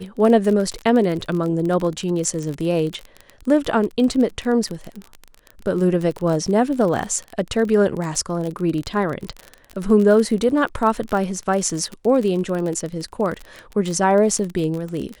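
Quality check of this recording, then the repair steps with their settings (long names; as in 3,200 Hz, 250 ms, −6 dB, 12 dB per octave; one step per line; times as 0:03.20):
surface crackle 33 per second −24 dBFS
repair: click removal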